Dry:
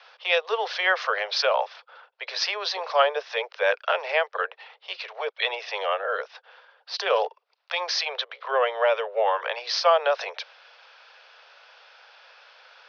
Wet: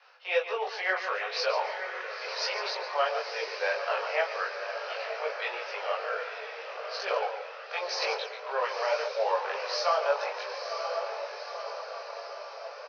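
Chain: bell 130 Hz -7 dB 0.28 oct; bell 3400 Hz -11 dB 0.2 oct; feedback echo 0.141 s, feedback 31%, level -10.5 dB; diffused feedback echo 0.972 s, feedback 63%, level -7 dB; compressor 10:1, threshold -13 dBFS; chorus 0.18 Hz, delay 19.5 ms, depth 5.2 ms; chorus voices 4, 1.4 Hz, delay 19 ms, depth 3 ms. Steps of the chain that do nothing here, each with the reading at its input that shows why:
bell 130 Hz: input band starts at 360 Hz

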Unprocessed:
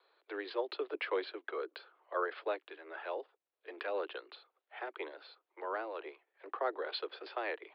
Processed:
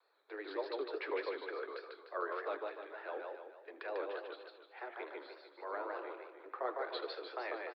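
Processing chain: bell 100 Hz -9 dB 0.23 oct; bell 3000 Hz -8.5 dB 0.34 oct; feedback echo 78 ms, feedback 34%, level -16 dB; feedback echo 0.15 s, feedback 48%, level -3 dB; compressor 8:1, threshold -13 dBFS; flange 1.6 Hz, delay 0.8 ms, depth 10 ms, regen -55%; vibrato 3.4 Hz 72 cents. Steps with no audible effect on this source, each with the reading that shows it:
bell 100 Hz: input band starts at 250 Hz; compressor, threshold -13 dBFS: input peak -21.0 dBFS

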